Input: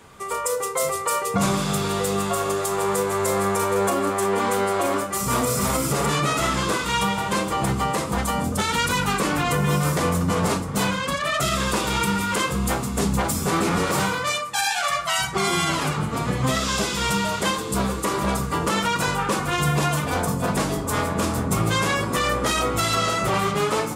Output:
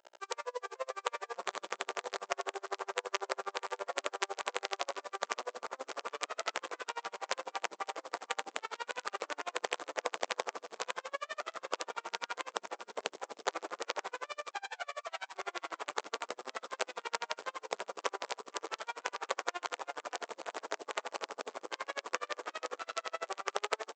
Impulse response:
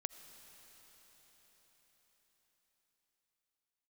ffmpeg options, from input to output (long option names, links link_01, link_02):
-filter_complex "[0:a]afftfilt=real='re*gte(hypot(re,im),0.0794)':imag='im*gte(hypot(re,im),0.0794)':win_size=1024:overlap=0.75,acrossover=split=2700[link_01][link_02];[link_02]acompressor=threshold=-40dB:ratio=4:attack=1:release=60[link_03];[link_01][link_03]amix=inputs=2:normalize=0,aeval=exprs='val(0)+0.00631*(sin(2*PI*60*n/s)+sin(2*PI*2*60*n/s)/2+sin(2*PI*3*60*n/s)/3+sin(2*PI*4*60*n/s)/4+sin(2*PI*5*60*n/s)/5)':channel_layout=same,acompressor=threshold=-24dB:ratio=8,lowpass=5300,tiltshelf=frequency=1100:gain=4,aresample=16000,acrusher=bits=4:dc=4:mix=0:aa=0.000001,aresample=44100,highpass=frequency=460:width=0.5412,highpass=frequency=460:width=1.3066,aecho=1:1:567:0.266,aeval=exprs='val(0)*pow(10,-38*(0.5-0.5*cos(2*PI*12*n/s))/20)':channel_layout=same,volume=-1.5dB"